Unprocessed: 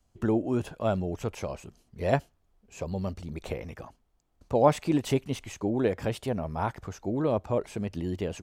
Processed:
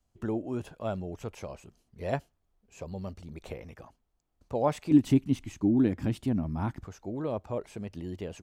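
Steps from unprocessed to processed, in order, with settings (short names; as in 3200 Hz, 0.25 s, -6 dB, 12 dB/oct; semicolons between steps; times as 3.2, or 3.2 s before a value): 4.91–6.85 resonant low shelf 370 Hz +7.5 dB, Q 3; gain -6 dB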